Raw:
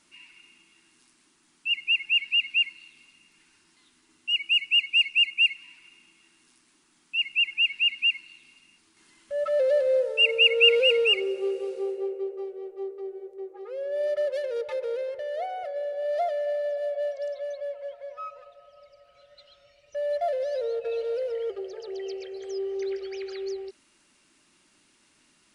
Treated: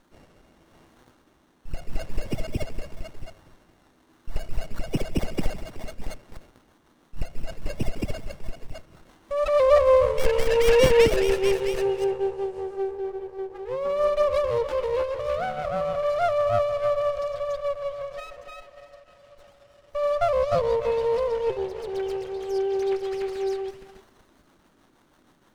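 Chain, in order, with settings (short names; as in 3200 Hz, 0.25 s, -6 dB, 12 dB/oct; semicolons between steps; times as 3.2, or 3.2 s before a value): dynamic EQ 1700 Hz, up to +4 dB, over -38 dBFS, Q 2; in parallel at -10 dB: wrapped overs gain 14.5 dB; on the sum: rotary speaker horn 0.85 Hz, later 6.3 Hz, at 5.32; delay with a stepping band-pass 0.303 s, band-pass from 970 Hz, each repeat 1.4 oct, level -2 dB; running maximum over 17 samples; gain +5.5 dB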